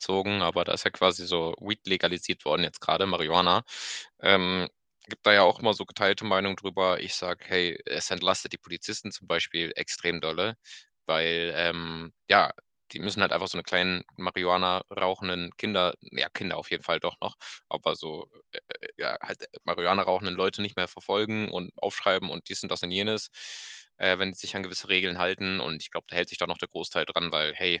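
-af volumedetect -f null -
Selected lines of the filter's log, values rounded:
mean_volume: -28.7 dB
max_volume: -2.8 dB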